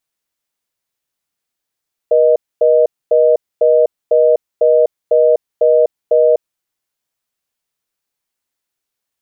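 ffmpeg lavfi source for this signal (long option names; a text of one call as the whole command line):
ffmpeg -f lavfi -i "aevalsrc='0.316*(sin(2*PI*480*t)+sin(2*PI*620*t))*clip(min(mod(t,0.5),0.25-mod(t,0.5))/0.005,0,1)':duration=4.48:sample_rate=44100" out.wav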